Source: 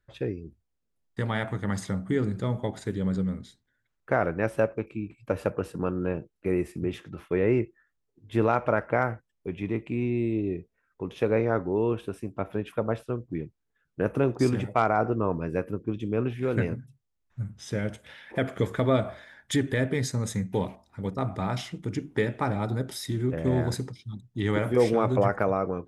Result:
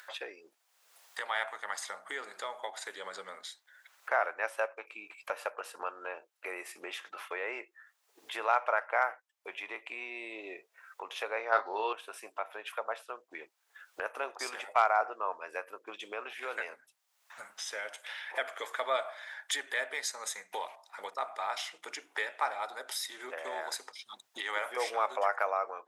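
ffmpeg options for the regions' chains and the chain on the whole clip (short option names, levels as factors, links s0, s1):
-filter_complex "[0:a]asettb=1/sr,asplit=3[s0][s1][s2];[s0]atrim=end=11.524[s3];[s1]atrim=start=11.52:end=11.93,asetpts=PTS-STARTPTS,afade=t=in:d=0.004:c=qsin,afade=t=out:st=0.406:d=0.004:c=qsin,lowpass=f=4400:t=q:w=8.6,acontrast=34,asplit=2[s4][s5];[s5]adelay=28,volume=0.355[s6];[s4][s6]amix=inputs=2:normalize=0,atrim=end_sample=18081[s7];[s2]atrim=start=11.926[s8];[s3][s7]acrossfade=d=0.004:c1=hsin:c2=qsin[s9];[s9][s8]acrossfade=d=0.004:c1=qsin:c2=hsin,highpass=f=720:w=0.5412,highpass=f=720:w=1.3066,acompressor=mode=upward:threshold=0.02:ratio=2.5"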